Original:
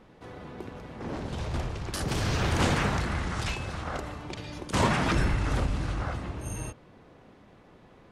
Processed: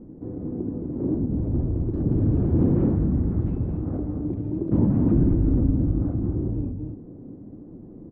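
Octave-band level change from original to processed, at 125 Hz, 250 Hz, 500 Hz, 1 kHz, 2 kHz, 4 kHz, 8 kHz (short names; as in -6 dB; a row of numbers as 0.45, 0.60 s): +8.0 dB, +11.0 dB, +3.5 dB, -13.5 dB, under -25 dB, under -35 dB, under -40 dB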